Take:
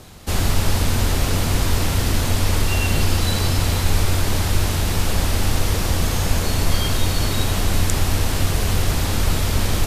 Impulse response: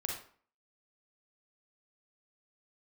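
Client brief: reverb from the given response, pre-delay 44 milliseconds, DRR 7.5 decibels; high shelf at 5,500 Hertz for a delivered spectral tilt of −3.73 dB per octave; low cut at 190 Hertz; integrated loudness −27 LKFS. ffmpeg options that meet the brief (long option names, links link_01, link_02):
-filter_complex "[0:a]highpass=190,highshelf=frequency=5500:gain=-3.5,asplit=2[link_01][link_02];[1:a]atrim=start_sample=2205,adelay=44[link_03];[link_02][link_03]afir=irnorm=-1:irlink=0,volume=-9.5dB[link_04];[link_01][link_04]amix=inputs=2:normalize=0,volume=-2.5dB"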